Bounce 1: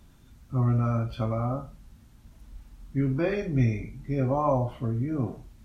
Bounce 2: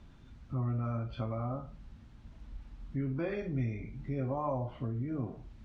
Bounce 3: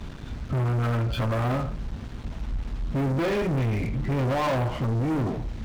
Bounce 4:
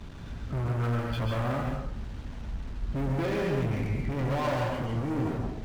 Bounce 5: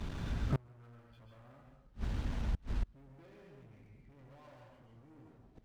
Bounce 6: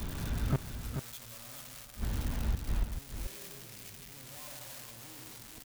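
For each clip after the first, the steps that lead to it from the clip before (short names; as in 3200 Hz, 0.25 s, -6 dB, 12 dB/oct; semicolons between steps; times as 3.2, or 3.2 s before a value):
LPF 4000 Hz 12 dB/oct; compressor 2:1, threshold -38 dBFS, peak gain reduction 10.5 dB
sample leveller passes 5
plate-style reverb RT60 0.51 s, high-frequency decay 0.75×, pre-delay 0.12 s, DRR 0.5 dB; gain -6 dB
flipped gate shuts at -26 dBFS, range -31 dB; gain +2 dB
switching spikes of -34.5 dBFS; echo 0.434 s -7.5 dB; gain +2.5 dB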